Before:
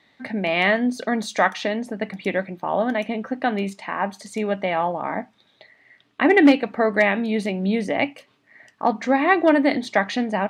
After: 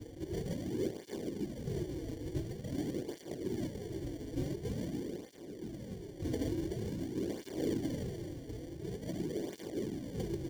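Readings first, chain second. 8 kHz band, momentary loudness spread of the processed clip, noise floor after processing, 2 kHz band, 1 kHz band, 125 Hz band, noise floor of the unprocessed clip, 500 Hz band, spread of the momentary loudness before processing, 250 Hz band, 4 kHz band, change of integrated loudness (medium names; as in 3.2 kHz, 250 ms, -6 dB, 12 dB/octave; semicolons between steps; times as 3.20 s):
no reading, 8 LU, -49 dBFS, -32.5 dB, -32.5 dB, -4.5 dB, -62 dBFS, -17.5 dB, 11 LU, -16.0 dB, -19.0 dB, -18.0 dB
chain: jump at every zero crossing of -22.5 dBFS; reverb removal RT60 0.55 s; spring tank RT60 2.4 s, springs 59 ms, chirp 35 ms, DRR 6 dB; spectral selection erased 9.14–9.40 s, 610–1700 Hz; peak limiter -12.5 dBFS, peak gain reduction 11 dB; resonant high shelf 3.4 kHz -13.5 dB, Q 1.5; spectral gate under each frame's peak -25 dB weak; on a send: feedback delay 296 ms, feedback 40%, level -5.5 dB; on the sum: sample-and-hold 34×; FFT filter 230 Hz 0 dB, 350 Hz +5 dB, 890 Hz -17 dB, 5.9 kHz -4 dB, 9.4 kHz -8 dB; cancelling through-zero flanger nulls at 0.47 Hz, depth 5.6 ms; trim +4.5 dB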